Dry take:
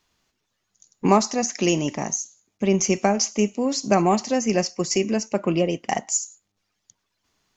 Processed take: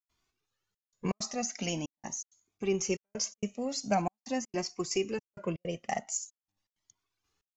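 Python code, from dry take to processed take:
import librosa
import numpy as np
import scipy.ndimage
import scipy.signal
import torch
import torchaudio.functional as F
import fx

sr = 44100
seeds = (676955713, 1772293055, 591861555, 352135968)

y = fx.step_gate(x, sr, bpm=162, pattern='.xxxxxxx..xx', floor_db=-60.0, edge_ms=4.5)
y = fx.comb_cascade(y, sr, direction='rising', hz=0.44)
y = y * librosa.db_to_amplitude(-5.0)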